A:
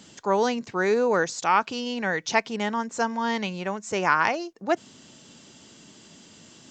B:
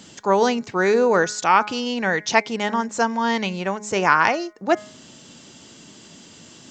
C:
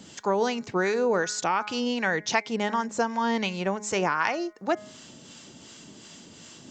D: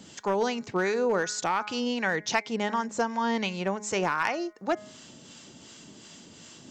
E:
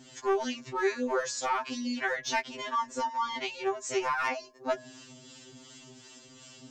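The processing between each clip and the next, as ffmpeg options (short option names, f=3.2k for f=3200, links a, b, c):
-af "bandreject=f=209.5:t=h:w=4,bandreject=f=419:t=h:w=4,bandreject=f=628.5:t=h:w=4,bandreject=f=838:t=h:w=4,bandreject=f=1.0475k:t=h:w=4,bandreject=f=1.257k:t=h:w=4,bandreject=f=1.4665k:t=h:w=4,bandreject=f=1.676k:t=h:w=4,bandreject=f=1.8855k:t=h:w=4,bandreject=f=2.095k:t=h:w=4,bandreject=f=2.3045k:t=h:w=4,volume=5dB"
-filter_complex "[0:a]acompressor=threshold=-19dB:ratio=4,acrossover=split=760[a][b];[a]aeval=exprs='val(0)*(1-0.5/2+0.5/2*cos(2*PI*2.7*n/s))':c=same[c];[b]aeval=exprs='val(0)*(1-0.5/2-0.5/2*cos(2*PI*2.7*n/s))':c=same[d];[c][d]amix=inputs=2:normalize=0"
-af "aeval=exprs='clip(val(0),-1,0.141)':c=same,volume=-1.5dB"
-af "afftfilt=real='re*2.45*eq(mod(b,6),0)':imag='im*2.45*eq(mod(b,6),0)':win_size=2048:overlap=0.75"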